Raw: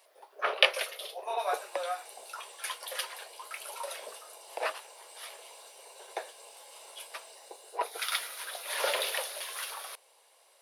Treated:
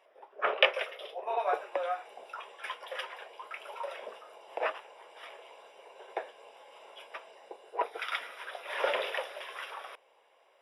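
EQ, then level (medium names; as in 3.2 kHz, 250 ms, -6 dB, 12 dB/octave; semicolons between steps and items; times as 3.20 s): Savitzky-Golay filter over 25 samples; bass shelf 270 Hz +10 dB; 0.0 dB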